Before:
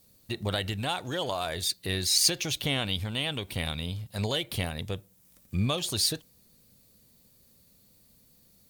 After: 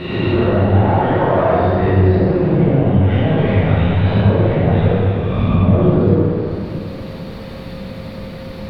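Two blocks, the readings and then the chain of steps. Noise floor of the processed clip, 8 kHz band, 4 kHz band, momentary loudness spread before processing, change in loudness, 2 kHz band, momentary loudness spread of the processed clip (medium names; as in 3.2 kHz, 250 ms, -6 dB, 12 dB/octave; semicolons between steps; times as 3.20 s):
-30 dBFS, under -25 dB, -5.5 dB, 11 LU, +14.5 dB, +9.5 dB, 16 LU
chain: reverse spectral sustain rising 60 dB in 0.82 s; low-pass that closes with the level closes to 680 Hz, closed at -22.5 dBFS; treble shelf 3.6 kHz -11.5 dB; in parallel at +2 dB: compressor with a negative ratio -40 dBFS, ratio -1; on the sum: power-law waveshaper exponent 0.7; whistle 530 Hz -48 dBFS; distance through air 390 m; plate-style reverb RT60 2.5 s, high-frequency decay 0.85×, DRR -9 dB; tape noise reduction on one side only encoder only; trim +3 dB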